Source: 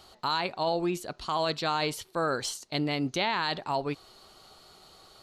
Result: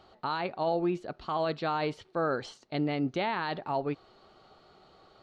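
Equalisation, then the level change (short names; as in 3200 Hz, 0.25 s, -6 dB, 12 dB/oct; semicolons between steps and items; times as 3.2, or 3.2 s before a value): tape spacing loss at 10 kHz 31 dB; low shelf 87 Hz -8.5 dB; notch 1000 Hz, Q 12; +2.0 dB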